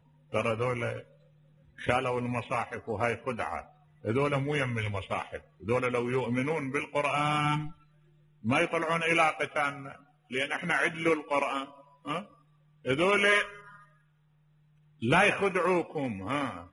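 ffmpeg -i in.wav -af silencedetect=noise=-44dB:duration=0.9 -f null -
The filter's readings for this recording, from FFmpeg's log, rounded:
silence_start: 13.76
silence_end: 15.02 | silence_duration: 1.26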